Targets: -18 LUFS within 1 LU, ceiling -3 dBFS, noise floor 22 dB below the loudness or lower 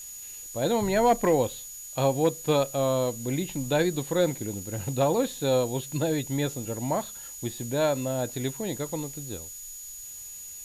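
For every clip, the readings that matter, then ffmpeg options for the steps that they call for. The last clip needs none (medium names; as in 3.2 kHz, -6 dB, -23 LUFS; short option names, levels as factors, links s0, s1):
steady tone 6.8 kHz; tone level -40 dBFS; noise floor -41 dBFS; noise floor target -50 dBFS; loudness -27.5 LUFS; peak level -13.0 dBFS; loudness target -18.0 LUFS
-> -af "bandreject=f=6800:w=30"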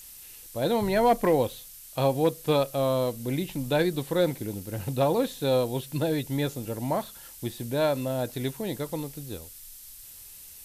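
steady tone not found; noise floor -47 dBFS; noise floor target -50 dBFS
-> -af "afftdn=nr=6:nf=-47"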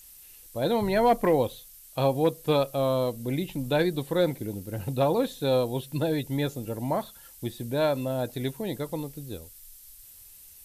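noise floor -50 dBFS; loudness -27.5 LUFS; peak level -13.5 dBFS; loudness target -18.0 LUFS
-> -af "volume=2.99"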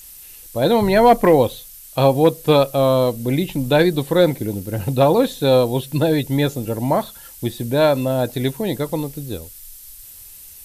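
loudness -18.0 LUFS; peak level -4.0 dBFS; noise floor -41 dBFS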